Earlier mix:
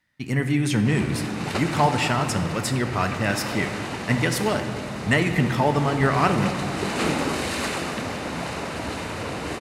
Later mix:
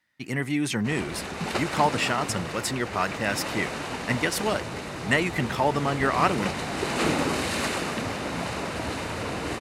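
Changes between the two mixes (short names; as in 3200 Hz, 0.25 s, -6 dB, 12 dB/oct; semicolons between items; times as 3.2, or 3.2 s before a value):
speech: add low shelf 160 Hz -12 dB; reverb: off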